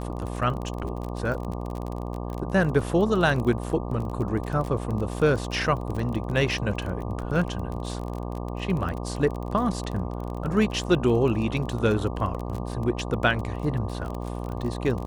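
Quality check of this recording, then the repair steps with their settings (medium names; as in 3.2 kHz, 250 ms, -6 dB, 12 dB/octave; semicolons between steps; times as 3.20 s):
buzz 60 Hz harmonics 20 -32 dBFS
crackle 27 per s -30 dBFS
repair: de-click; de-hum 60 Hz, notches 20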